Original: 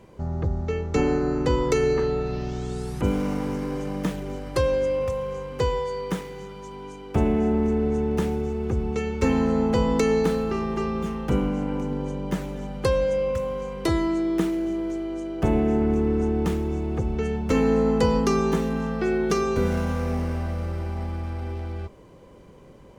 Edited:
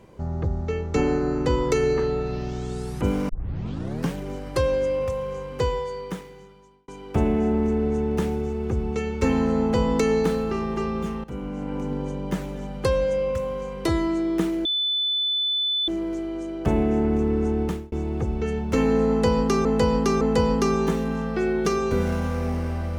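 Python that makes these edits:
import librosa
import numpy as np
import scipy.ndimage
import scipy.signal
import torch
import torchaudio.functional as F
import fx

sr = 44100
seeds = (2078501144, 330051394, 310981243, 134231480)

y = fx.edit(x, sr, fx.tape_start(start_s=3.29, length_s=0.86),
    fx.fade_out_span(start_s=5.64, length_s=1.24),
    fx.fade_in_from(start_s=11.24, length_s=0.66, floor_db=-16.5),
    fx.insert_tone(at_s=14.65, length_s=1.23, hz=3500.0, db=-21.0),
    fx.fade_out_span(start_s=16.39, length_s=0.3),
    fx.repeat(start_s=17.86, length_s=0.56, count=3), tone=tone)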